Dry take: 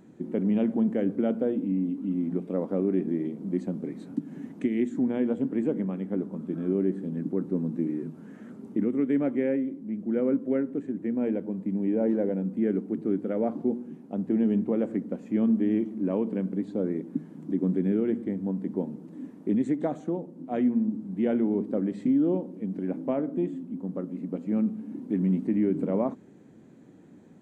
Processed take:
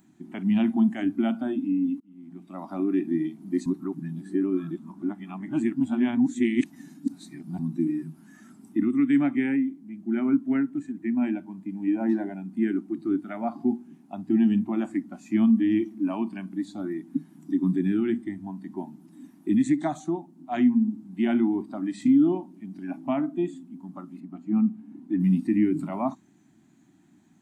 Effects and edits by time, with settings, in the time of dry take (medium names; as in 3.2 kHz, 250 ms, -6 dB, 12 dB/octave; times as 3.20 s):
2.00–2.70 s: fade in
3.66–7.59 s: reverse
24.20–25.20 s: treble shelf 2.4 kHz -9.5 dB
whole clip: Chebyshev band-stop 330–710 Hz, order 2; spectral noise reduction 11 dB; treble shelf 2.3 kHz +11.5 dB; trim +4.5 dB